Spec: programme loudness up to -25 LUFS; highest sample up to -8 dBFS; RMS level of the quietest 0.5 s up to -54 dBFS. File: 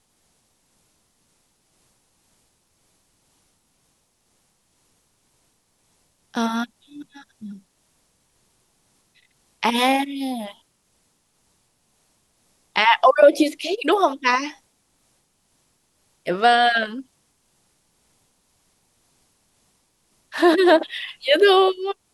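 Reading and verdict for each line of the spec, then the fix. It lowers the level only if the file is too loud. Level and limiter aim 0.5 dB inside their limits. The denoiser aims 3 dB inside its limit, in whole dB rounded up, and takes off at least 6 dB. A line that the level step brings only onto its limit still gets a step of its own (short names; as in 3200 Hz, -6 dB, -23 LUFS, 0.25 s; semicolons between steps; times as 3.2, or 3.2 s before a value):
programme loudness -19.0 LUFS: fail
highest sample -2.5 dBFS: fail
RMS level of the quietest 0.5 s -67 dBFS: OK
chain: gain -6.5 dB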